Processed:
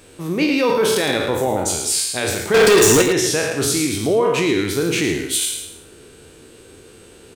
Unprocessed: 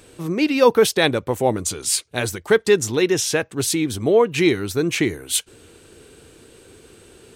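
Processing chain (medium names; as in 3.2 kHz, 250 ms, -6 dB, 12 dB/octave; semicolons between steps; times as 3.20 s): spectral sustain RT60 0.78 s; hum notches 60/120 Hz; 2.54–3.02 s: waveshaping leveller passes 5; peak limiter -9.5 dBFS, peak gain reduction 8 dB; on a send: delay 110 ms -8.5 dB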